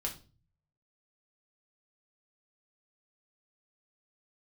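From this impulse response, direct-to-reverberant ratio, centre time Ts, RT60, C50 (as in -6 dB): -0.5 dB, 13 ms, 0.35 s, 11.5 dB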